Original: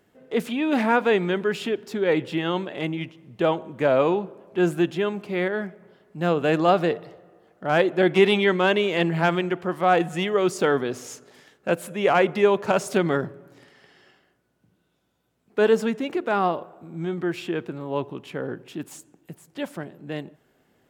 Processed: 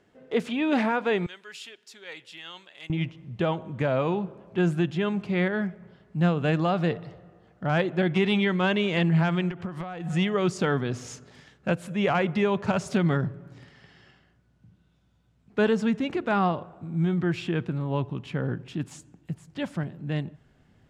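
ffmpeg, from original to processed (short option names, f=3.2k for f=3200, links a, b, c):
-filter_complex "[0:a]asettb=1/sr,asplit=3[a][b][c];[a]atrim=end=1.264[d];[b]atrim=start=1.26:end=2.9,asetpts=PTS-STARTPTS,afade=t=in:d=0.004:c=qsin,afade=t=out:st=1.636:d=0.004:c=qsin,aderivative[e];[c]atrim=start=2.896[f];[d][e]acrossfade=d=0.004:c1=hsin:c2=qsin[g];[g][f]acrossfade=d=0.004:c1=qsin:c2=hsin,asettb=1/sr,asplit=3[h][i][j];[h]atrim=end=9.504[k];[i]atrim=start=9.5:end=10.1,asetpts=PTS-STARTPTS,afade=t=in:d=0.004:c=qsin,afade=t=out:st=0.596:d=0.004:c=qsin,acompressor=threshold=-30dB:ratio=20:attack=3.2:release=140:knee=1:detection=peak[l];[j]atrim=start=10.096[m];[k][l]acrossfade=d=0.004:c1=hsin:c2=qsin[n];[n][m]acrossfade=d=0.004:c1=qsin:c2=hsin,lowpass=6.9k,asubboost=boost=6:cutoff=150,alimiter=limit=-14.5dB:level=0:latency=1:release=335"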